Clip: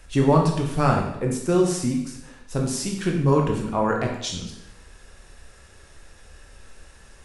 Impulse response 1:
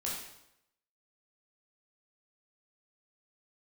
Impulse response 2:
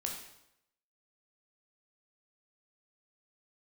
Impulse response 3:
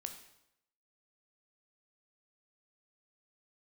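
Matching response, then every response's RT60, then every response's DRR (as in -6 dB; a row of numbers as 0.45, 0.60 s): 2; 0.80, 0.80, 0.80 s; -5.0, 0.0, 5.5 dB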